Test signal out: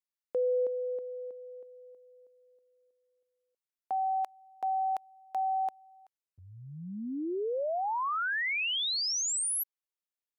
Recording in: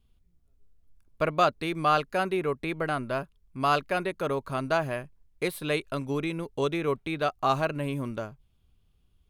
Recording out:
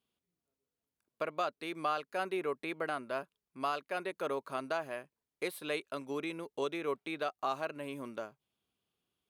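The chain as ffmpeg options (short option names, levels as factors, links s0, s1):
-af "highpass=300,alimiter=limit=0.141:level=0:latency=1:release=423,volume=0.531"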